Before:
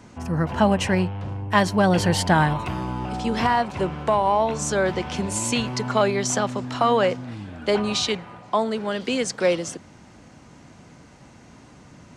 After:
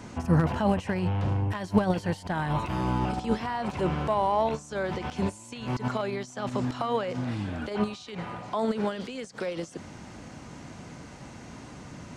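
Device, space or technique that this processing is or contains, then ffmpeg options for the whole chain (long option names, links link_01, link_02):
de-esser from a sidechain: -filter_complex "[0:a]asplit=2[link_01][link_02];[link_02]highpass=4400,apad=whole_len=536399[link_03];[link_01][link_03]sidechaincompress=threshold=-51dB:ratio=8:attack=0.61:release=41,volume=4dB"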